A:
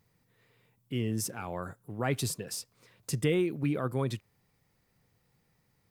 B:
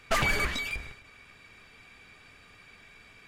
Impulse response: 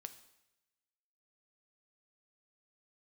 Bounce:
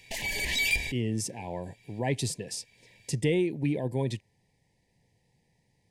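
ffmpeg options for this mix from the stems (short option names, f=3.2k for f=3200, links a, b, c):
-filter_complex "[0:a]lowpass=f=10k:w=0.5412,lowpass=f=10k:w=1.3066,acontrast=69,volume=-5dB,asplit=2[a][b];[1:a]highshelf=f=2.5k:g=12,alimiter=limit=-19dB:level=0:latency=1:release=27,dynaudnorm=f=110:g=11:m=11dB,volume=-5.5dB[c];[b]apad=whole_len=144448[d];[c][d]sidechaincompress=threshold=-52dB:ratio=10:attack=8:release=567[e];[a][e]amix=inputs=2:normalize=0,asuperstop=centerf=1300:order=12:qfactor=1.9"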